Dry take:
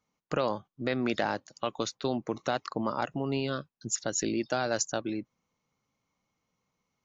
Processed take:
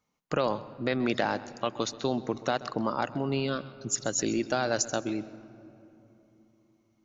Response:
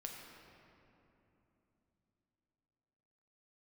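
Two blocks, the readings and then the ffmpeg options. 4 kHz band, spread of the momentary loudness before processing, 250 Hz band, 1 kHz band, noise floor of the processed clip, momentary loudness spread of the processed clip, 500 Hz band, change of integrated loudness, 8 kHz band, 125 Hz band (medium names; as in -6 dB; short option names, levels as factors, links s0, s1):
+1.5 dB, 5 LU, +1.5 dB, +1.5 dB, -71 dBFS, 6 LU, +1.5 dB, +1.5 dB, no reading, +2.0 dB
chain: -filter_complex "[0:a]asplit=2[s0][s1];[1:a]atrim=start_sample=2205,lowshelf=f=110:g=11,adelay=130[s2];[s1][s2]afir=irnorm=-1:irlink=0,volume=0.224[s3];[s0][s3]amix=inputs=2:normalize=0,volume=1.19"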